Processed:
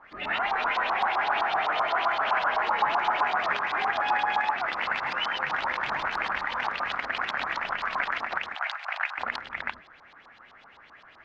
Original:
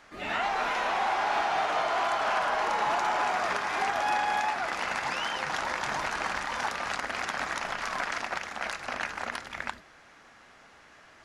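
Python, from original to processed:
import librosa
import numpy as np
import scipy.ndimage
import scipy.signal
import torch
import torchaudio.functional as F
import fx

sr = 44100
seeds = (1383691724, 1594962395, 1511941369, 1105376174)

y = fx.filter_lfo_lowpass(x, sr, shape='saw_up', hz=7.8, low_hz=920.0, high_hz=4400.0, q=3.7)
y = fx.ellip_bandpass(y, sr, low_hz=700.0, high_hz=8400.0, order=3, stop_db=40, at=(8.55, 9.18))
y = y * 10.0 ** (-2.5 / 20.0)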